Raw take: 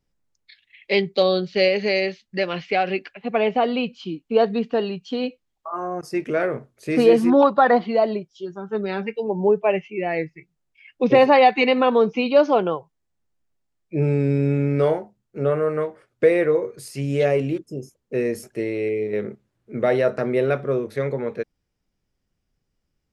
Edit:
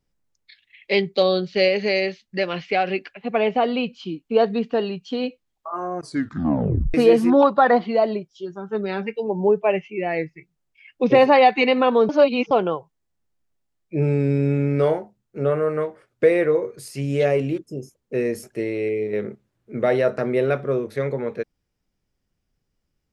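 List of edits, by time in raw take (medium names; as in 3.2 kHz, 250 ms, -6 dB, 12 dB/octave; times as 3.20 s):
5.99 s: tape stop 0.95 s
12.09–12.51 s: reverse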